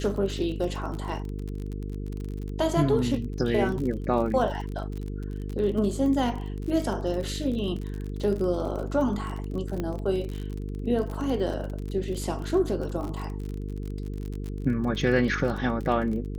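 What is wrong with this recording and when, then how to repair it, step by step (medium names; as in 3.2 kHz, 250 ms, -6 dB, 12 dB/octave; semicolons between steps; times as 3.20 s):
buzz 50 Hz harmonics 9 -33 dBFS
crackle 39 per s -32 dBFS
9.80 s: pop -18 dBFS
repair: de-click; de-hum 50 Hz, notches 9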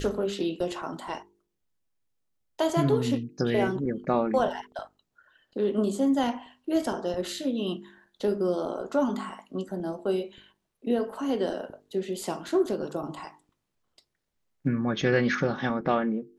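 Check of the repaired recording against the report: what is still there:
nothing left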